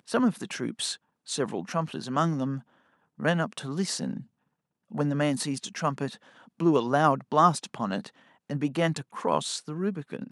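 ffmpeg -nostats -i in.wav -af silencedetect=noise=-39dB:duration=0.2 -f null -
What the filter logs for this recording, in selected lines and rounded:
silence_start: 0.95
silence_end: 1.28 | silence_duration: 0.33
silence_start: 2.59
silence_end: 3.20 | silence_duration: 0.60
silence_start: 4.22
silence_end: 4.92 | silence_duration: 0.70
silence_start: 6.15
silence_end: 6.60 | silence_duration: 0.45
silence_start: 8.08
silence_end: 8.50 | silence_duration: 0.41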